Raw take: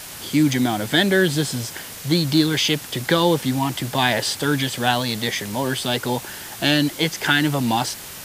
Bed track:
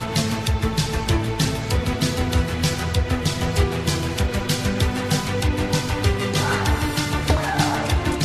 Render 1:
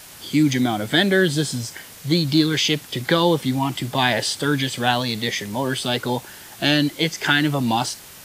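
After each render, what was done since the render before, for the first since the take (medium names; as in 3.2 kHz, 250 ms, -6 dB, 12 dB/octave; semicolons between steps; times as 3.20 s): noise print and reduce 6 dB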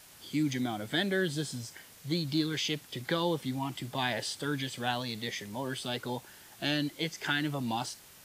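trim -12.5 dB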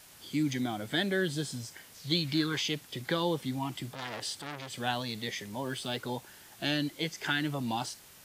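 1.94–2.61 s: peaking EQ 5.9 kHz -> 890 Hz +11.5 dB; 3.92–4.70 s: transformer saturation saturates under 3.5 kHz; 5.66–6.06 s: short-mantissa float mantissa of 4-bit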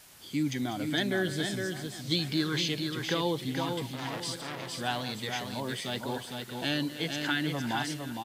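backward echo that repeats 623 ms, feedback 46%, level -13 dB; delay 459 ms -5 dB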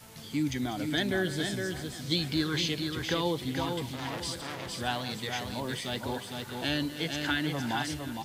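add bed track -27 dB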